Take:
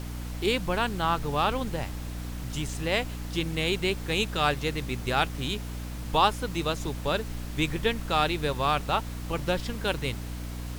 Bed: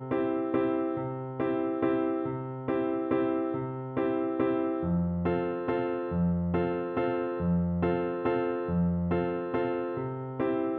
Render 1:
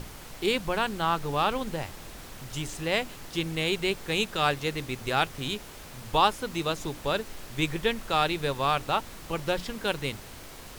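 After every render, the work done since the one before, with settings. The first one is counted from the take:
mains-hum notches 60/120/180/240/300 Hz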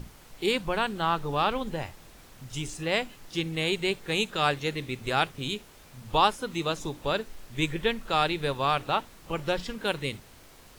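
noise reduction from a noise print 8 dB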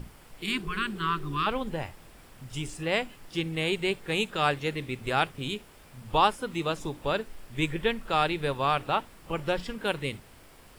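thirty-one-band graphic EQ 4,000 Hz −5 dB, 6,300 Hz −7 dB, 16,000 Hz −7 dB
0:00.45–0:01.44: healed spectral selection 340–990 Hz before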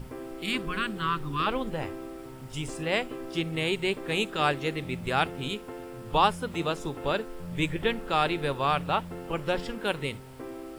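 mix in bed −11.5 dB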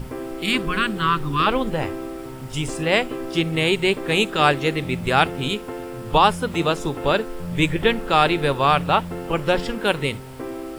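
level +8.5 dB
brickwall limiter −3 dBFS, peak gain reduction 2.5 dB

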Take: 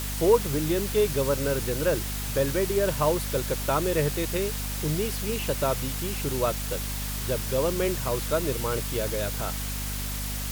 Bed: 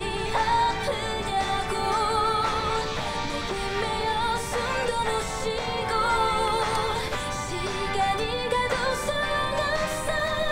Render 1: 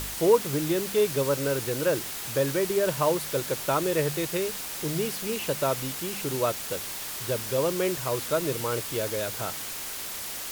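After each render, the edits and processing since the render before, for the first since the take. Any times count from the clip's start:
hum removal 50 Hz, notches 5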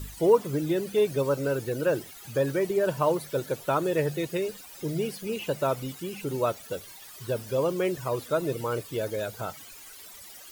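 broadband denoise 16 dB, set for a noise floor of −36 dBFS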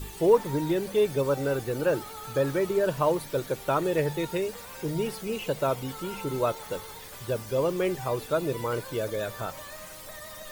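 mix in bed −18.5 dB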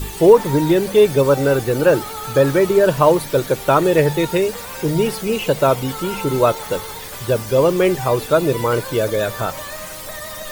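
level +11.5 dB
brickwall limiter −1 dBFS, peak gain reduction 3 dB

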